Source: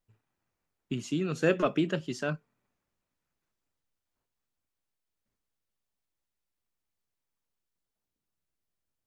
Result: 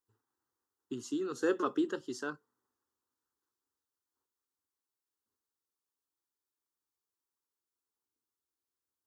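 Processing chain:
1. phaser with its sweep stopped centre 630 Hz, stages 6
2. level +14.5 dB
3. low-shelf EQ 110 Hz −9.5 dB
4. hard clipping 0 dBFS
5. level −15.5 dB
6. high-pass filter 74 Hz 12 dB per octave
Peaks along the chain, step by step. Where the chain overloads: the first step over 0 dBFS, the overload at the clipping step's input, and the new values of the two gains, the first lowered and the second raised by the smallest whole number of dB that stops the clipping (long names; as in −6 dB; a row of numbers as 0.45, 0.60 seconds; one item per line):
−17.5, −3.0, −4.0, −4.0, −19.5, −20.0 dBFS
no step passes full scale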